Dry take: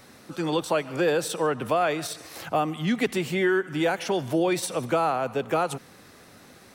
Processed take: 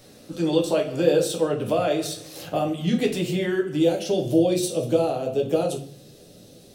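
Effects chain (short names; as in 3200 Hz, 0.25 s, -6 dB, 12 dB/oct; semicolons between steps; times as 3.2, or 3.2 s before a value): band shelf 1400 Hz -9 dB, from 3.76 s -16 dB; reverb RT60 0.45 s, pre-delay 6 ms, DRR 0 dB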